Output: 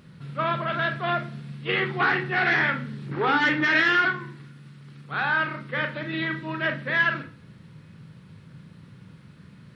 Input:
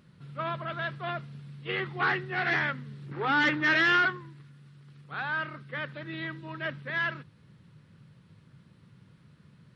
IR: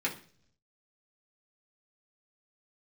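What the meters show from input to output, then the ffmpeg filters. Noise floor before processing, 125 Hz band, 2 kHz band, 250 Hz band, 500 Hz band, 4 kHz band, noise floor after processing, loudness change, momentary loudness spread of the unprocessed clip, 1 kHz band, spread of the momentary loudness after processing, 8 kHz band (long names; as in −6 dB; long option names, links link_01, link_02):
−59 dBFS, +5.5 dB, +5.0 dB, +5.5 dB, +6.5 dB, +4.0 dB, −50 dBFS, +5.0 dB, 17 LU, +5.0 dB, 14 LU, can't be measured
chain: -filter_complex "[0:a]acompressor=threshold=-27dB:ratio=6,asplit=2[link_01][link_02];[1:a]atrim=start_sample=2205,adelay=29[link_03];[link_02][link_03]afir=irnorm=-1:irlink=0,volume=-10.5dB[link_04];[link_01][link_04]amix=inputs=2:normalize=0,volume=7.5dB"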